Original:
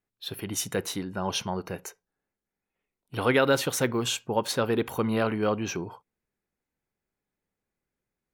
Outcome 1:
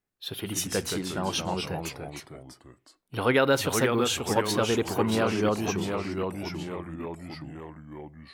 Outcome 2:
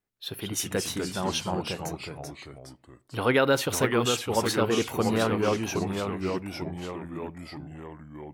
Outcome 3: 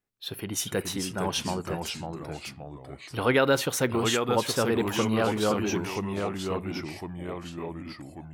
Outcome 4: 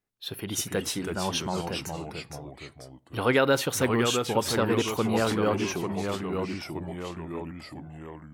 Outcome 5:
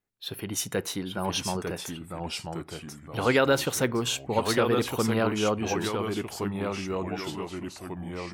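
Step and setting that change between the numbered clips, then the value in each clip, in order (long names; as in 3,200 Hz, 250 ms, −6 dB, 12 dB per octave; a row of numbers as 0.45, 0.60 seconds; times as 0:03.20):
delay with pitch and tempo change per echo, delay time: 81, 158, 370, 234, 808 milliseconds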